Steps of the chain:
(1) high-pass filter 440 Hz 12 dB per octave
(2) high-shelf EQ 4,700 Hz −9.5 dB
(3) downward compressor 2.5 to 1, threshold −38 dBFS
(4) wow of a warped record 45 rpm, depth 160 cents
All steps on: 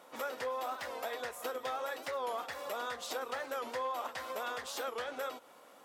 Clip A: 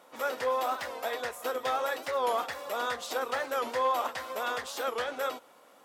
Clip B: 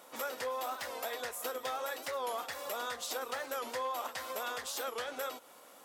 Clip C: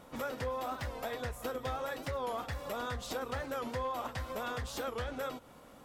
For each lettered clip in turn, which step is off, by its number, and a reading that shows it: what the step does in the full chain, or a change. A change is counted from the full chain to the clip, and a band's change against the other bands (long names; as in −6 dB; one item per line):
3, average gain reduction 5.0 dB
2, 8 kHz band +5.5 dB
1, 125 Hz band +24.0 dB